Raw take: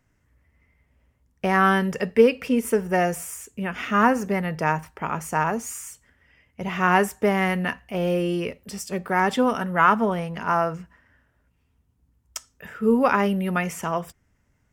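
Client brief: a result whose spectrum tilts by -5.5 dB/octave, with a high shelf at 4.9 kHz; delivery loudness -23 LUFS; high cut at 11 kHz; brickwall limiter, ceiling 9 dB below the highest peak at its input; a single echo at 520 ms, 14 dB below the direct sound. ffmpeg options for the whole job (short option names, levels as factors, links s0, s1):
-af "lowpass=11000,highshelf=f=4900:g=-8,alimiter=limit=0.224:level=0:latency=1,aecho=1:1:520:0.2,volume=1.33"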